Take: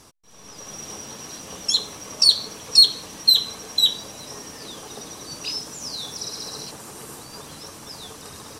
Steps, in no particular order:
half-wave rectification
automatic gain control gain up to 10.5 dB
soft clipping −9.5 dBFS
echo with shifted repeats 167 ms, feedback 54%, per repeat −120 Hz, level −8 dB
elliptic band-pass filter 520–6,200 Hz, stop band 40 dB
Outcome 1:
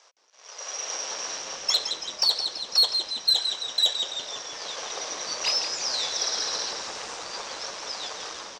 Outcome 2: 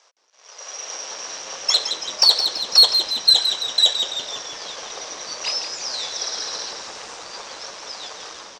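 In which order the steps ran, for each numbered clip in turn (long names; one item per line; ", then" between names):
automatic gain control, then half-wave rectification, then elliptic band-pass filter, then echo with shifted repeats, then soft clipping
half-wave rectification, then elliptic band-pass filter, then soft clipping, then automatic gain control, then echo with shifted repeats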